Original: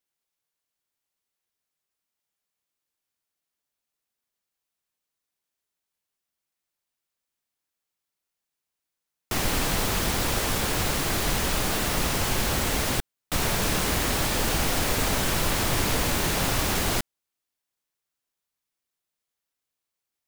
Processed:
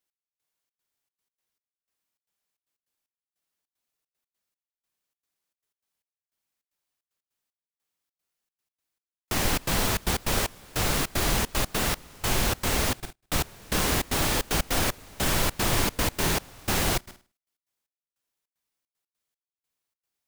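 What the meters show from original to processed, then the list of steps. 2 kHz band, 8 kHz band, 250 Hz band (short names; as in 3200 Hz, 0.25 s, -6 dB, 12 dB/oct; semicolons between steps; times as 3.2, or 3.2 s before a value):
-1.5 dB, -1.5 dB, -1.5 dB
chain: flutter echo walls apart 8.8 m, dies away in 0.34 s; step gate "x...xxx.xxx.x.x" 152 bpm -24 dB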